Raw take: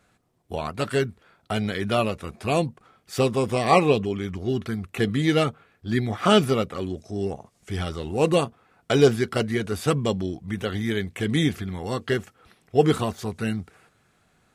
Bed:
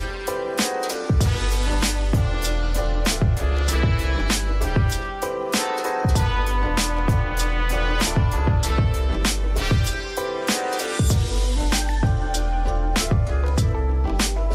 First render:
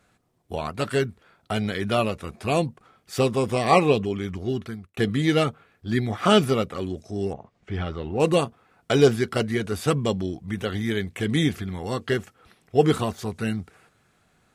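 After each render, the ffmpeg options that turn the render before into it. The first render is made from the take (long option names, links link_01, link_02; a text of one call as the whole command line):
ffmpeg -i in.wav -filter_complex "[0:a]asettb=1/sr,asplit=3[link_01][link_02][link_03];[link_01]atrim=end=7.334[link_04];[link_02]atrim=start=7.33:end=8.2,asetpts=PTS-STARTPTS,afade=type=in:duration=0.004:curve=qsin,afade=type=out:start_time=0.866:duration=0.004:curve=qsin,lowpass=2700[link_05];[link_03]atrim=start=8.196[link_06];[link_04][link_05]acrossfade=duration=0.004:curve1=hsin:curve2=qsin[link_07];[link_07][link_06]acrossfade=duration=0.004:curve1=qsin:curve2=hsin,asplit=2[link_08][link_09];[link_08]atrim=end=4.97,asetpts=PTS-STARTPTS,afade=type=out:start_time=4.27:duration=0.7:curve=qsin[link_10];[link_09]atrim=start=4.97,asetpts=PTS-STARTPTS,afade=type=in:duration=0.004:curve=hsin[link_11];[link_10][link_11]concat=n=2:v=0:a=1" out.wav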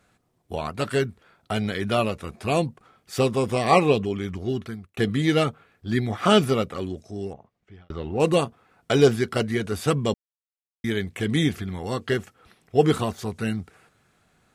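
ffmpeg -i in.wav -filter_complex "[0:a]asplit=4[link_01][link_02][link_03][link_04];[link_01]atrim=end=7.9,asetpts=PTS-STARTPTS,afade=type=out:start_time=6.76:duration=1.14[link_05];[link_02]atrim=start=7.9:end=10.14,asetpts=PTS-STARTPTS,afade=type=in:duration=0.004:curve=hsin,afade=type=out:start_time=2.236:duration=0.004:curve=hsin[link_06];[link_03]atrim=start=10.14:end=10.84,asetpts=PTS-STARTPTS,volume=0[link_07];[link_04]atrim=start=10.84,asetpts=PTS-STARTPTS,afade=type=in:duration=0.004:curve=hsin[link_08];[link_05][link_06][link_07][link_08]concat=n=4:v=0:a=1" out.wav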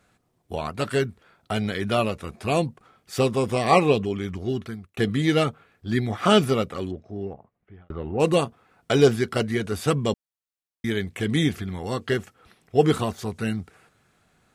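ffmpeg -i in.wav -filter_complex "[0:a]asettb=1/sr,asplit=3[link_01][link_02][link_03];[link_01]atrim=end=6.914[link_04];[link_02]atrim=start=6.91:end=8.19,asetpts=PTS-STARTPTS,afade=type=in:duration=0.004:curve=qsin,afade=type=out:start_time=1.276:duration=0.004:curve=qsin,lowpass=2000[link_05];[link_03]atrim=start=8.186[link_06];[link_04][link_05]acrossfade=duration=0.004:curve1=hsin:curve2=qsin[link_07];[link_07][link_06]acrossfade=duration=0.004:curve1=qsin:curve2=hsin" out.wav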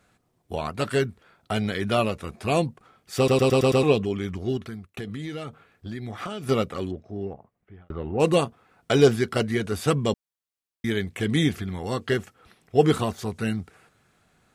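ffmpeg -i in.wav -filter_complex "[0:a]asettb=1/sr,asplit=3[link_01][link_02][link_03];[link_01]atrim=end=4.574[link_04];[link_02]atrim=start=4.57:end=6.49,asetpts=PTS-STARTPTS,afade=type=in:duration=0.004:curve=qsin,afade=type=out:start_time=1.916:duration=0.004:curve=qsin,acompressor=threshold=-30dB:ratio=8:attack=3.2:release=140:knee=1:detection=peak[link_05];[link_03]atrim=start=6.486[link_06];[link_04][link_05]acrossfade=duration=0.004:curve1=hsin:curve2=qsin[link_07];[link_07][link_06]acrossfade=duration=0.004:curve1=qsin:curve2=hsin,asplit=7[link_08][link_09][link_10][link_11][link_12][link_13][link_14];[link_08]atrim=end=3.282[link_15];[link_09]atrim=start=3.168:end=3.282[link_16];[link_10]atrim=start=3.168:end=3.282[link_17];[link_11]atrim=start=3.168:end=3.282[link_18];[link_12]atrim=start=3.168:end=3.282[link_19];[link_13]atrim=start=3.168:end=3.282[link_20];[link_14]atrim=start=3.828[link_21];[link_15][link_16]acrossfade=duration=0.004:curve1=hsin:curve2=hsin[link_22];[link_22][link_17]acrossfade=duration=0.004:curve1=hsin:curve2=hsin[link_23];[link_23][link_18]acrossfade=duration=0.004:curve1=hsin:curve2=hsin[link_24];[link_24][link_19]acrossfade=duration=0.004:curve1=hsin:curve2=hsin[link_25];[link_25][link_20]acrossfade=duration=0.004:curve1=hsin:curve2=hsin[link_26];[link_26][link_21]acrossfade=duration=0.004:curve1=hsin:curve2=hsin" out.wav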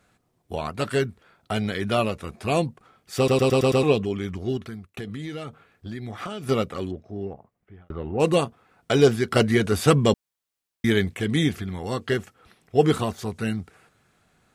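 ffmpeg -i in.wav -filter_complex "[0:a]asettb=1/sr,asplit=3[link_01][link_02][link_03];[link_01]atrim=end=9.314[link_04];[link_02]atrim=start=9.31:end=11.14,asetpts=PTS-STARTPTS,afade=type=in:duration=0.004:curve=qsin,afade=type=out:start_time=1.826:duration=0.004:curve=qsin,acontrast=36[link_05];[link_03]atrim=start=11.136[link_06];[link_04][link_05]acrossfade=duration=0.004:curve1=hsin:curve2=qsin[link_07];[link_07][link_06]acrossfade=duration=0.004:curve1=qsin:curve2=hsin" out.wav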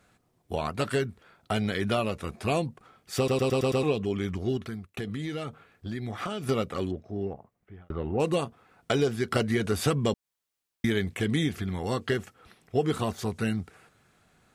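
ffmpeg -i in.wav -af "acompressor=threshold=-23dB:ratio=4" out.wav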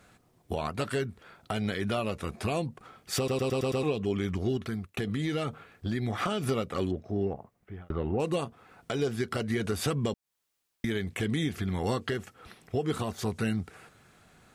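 ffmpeg -i in.wav -filter_complex "[0:a]asplit=2[link_01][link_02];[link_02]acompressor=threshold=-34dB:ratio=6,volume=-2.5dB[link_03];[link_01][link_03]amix=inputs=2:normalize=0,alimiter=limit=-19dB:level=0:latency=1:release=354" out.wav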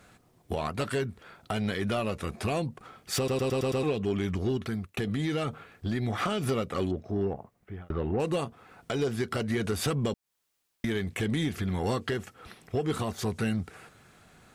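ffmpeg -i in.wav -af "aeval=exprs='0.119*(cos(1*acos(clip(val(0)/0.119,-1,1)))-cos(1*PI/2))+0.00668*(cos(5*acos(clip(val(0)/0.119,-1,1)))-cos(5*PI/2))':channel_layout=same" out.wav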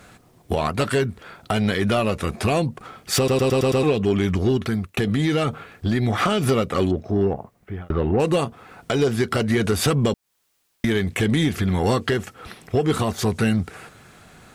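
ffmpeg -i in.wav -af "volume=9dB" out.wav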